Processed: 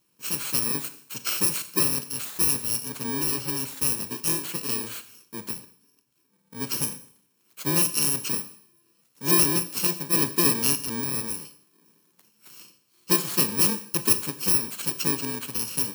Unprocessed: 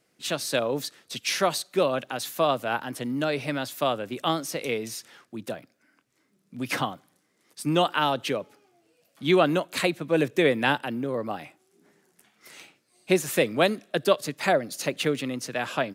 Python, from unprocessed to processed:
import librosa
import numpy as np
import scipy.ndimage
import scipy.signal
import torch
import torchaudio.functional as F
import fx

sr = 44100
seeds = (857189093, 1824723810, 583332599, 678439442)

y = fx.bit_reversed(x, sr, seeds[0], block=64)
y = fx.rev_schroeder(y, sr, rt60_s=0.59, comb_ms=30, drr_db=11.0)